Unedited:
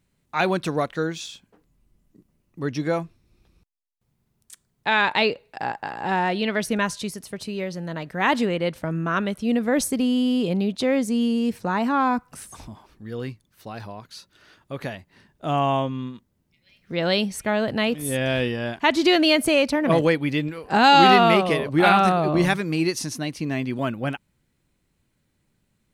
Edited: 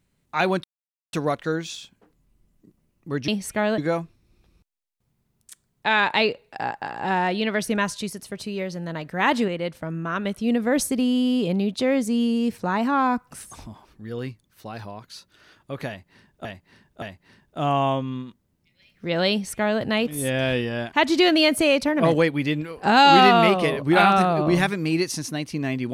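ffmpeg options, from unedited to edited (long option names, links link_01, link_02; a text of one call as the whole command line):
ffmpeg -i in.wav -filter_complex "[0:a]asplit=8[link_01][link_02][link_03][link_04][link_05][link_06][link_07][link_08];[link_01]atrim=end=0.64,asetpts=PTS-STARTPTS,afade=type=out:start_time=0.636:duration=0.004:curve=hsin,apad=pad_dur=0.49[link_09];[link_02]atrim=start=0.64:end=2.792,asetpts=PTS-STARTPTS,afade=type=in:duration=0.004:curve=hsin[link_10];[link_03]atrim=start=17.178:end=17.682[link_11];[link_04]atrim=start=2.788:end=8.492[link_12];[link_05]atrim=start=8.488:end=9.262,asetpts=PTS-STARTPTS,volume=-3.5dB[link_13];[link_06]atrim=start=9.258:end=15.462[link_14];[link_07]atrim=start=14.888:end=15.462[link_15];[link_08]atrim=start=14.888[link_16];[link_09][link_10]concat=n=2:v=0:a=1[link_17];[link_17][link_11]acrossfade=duration=0.004:curve1=hsin:curve2=hsin[link_18];[link_18][link_12]acrossfade=duration=0.004:curve1=hsin:curve2=hsin[link_19];[link_19][link_13]acrossfade=duration=0.004:curve1=hsin:curve2=hsin[link_20];[link_20][link_14]acrossfade=duration=0.004:curve1=hsin:curve2=hsin[link_21];[link_21][link_15]acrossfade=duration=0.004:curve1=hsin:curve2=hsin[link_22];[link_22][link_16]acrossfade=duration=0.004:curve1=hsin:curve2=hsin" out.wav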